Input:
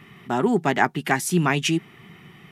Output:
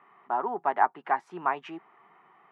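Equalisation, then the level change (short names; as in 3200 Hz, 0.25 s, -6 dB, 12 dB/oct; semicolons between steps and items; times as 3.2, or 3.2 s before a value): HPF 690 Hz 12 dB/oct; synth low-pass 1000 Hz, resonance Q 2.1; -4.5 dB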